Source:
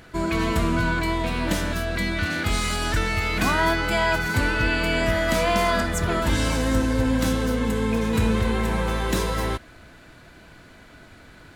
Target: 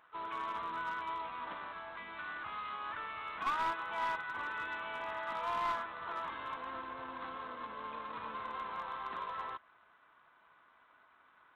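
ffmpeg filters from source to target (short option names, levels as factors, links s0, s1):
-filter_complex "[0:a]asplit=3[s0][s1][s2];[s1]asetrate=55563,aresample=44100,atempo=0.793701,volume=0.178[s3];[s2]asetrate=58866,aresample=44100,atempo=0.749154,volume=0.355[s4];[s0][s3][s4]amix=inputs=3:normalize=0,bandpass=f=1100:t=q:w=5.3:csg=0,aemphasis=mode=production:type=75fm,aresample=8000,acrusher=bits=3:mode=log:mix=0:aa=0.000001,aresample=44100,aeval=exprs='clip(val(0),-1,0.0473)':c=same,volume=0.562"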